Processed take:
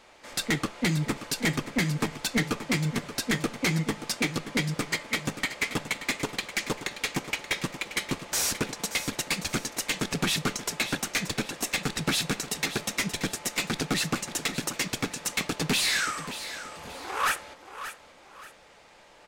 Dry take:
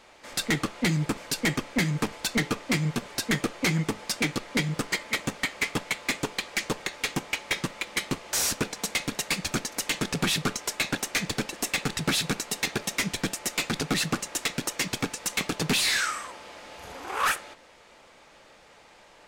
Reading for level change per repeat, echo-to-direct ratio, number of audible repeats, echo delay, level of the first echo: -9.5 dB, -11.5 dB, 2, 0.579 s, -12.0 dB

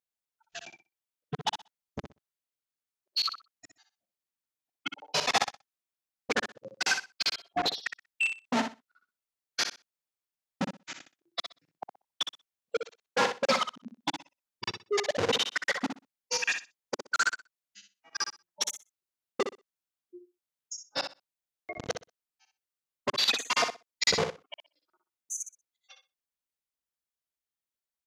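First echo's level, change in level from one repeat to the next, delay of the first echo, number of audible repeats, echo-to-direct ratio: -8.0 dB, -15.5 dB, 62 ms, 2, -8.0 dB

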